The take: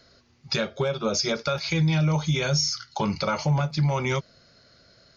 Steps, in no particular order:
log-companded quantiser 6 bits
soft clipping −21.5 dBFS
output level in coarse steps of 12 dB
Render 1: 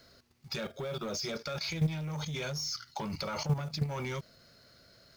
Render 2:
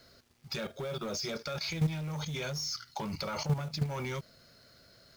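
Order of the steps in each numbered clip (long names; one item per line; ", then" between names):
log-companded quantiser, then soft clipping, then output level in coarse steps
soft clipping, then output level in coarse steps, then log-companded quantiser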